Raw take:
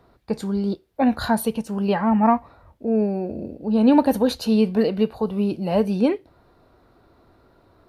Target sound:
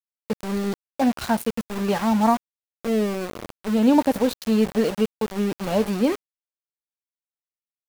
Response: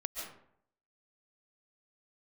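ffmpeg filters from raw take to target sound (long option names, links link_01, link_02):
-af "aeval=exprs='val(0)*gte(abs(val(0)),0.0562)':channel_layout=same,volume=-1.5dB"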